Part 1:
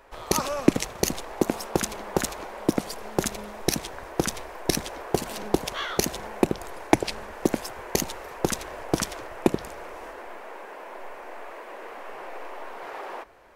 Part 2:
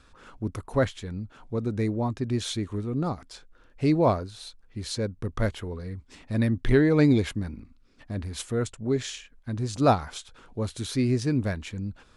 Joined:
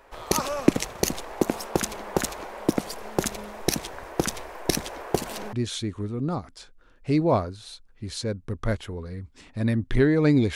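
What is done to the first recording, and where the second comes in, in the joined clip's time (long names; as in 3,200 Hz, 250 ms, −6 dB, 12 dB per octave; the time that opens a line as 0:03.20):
part 1
0:05.53: continue with part 2 from 0:02.27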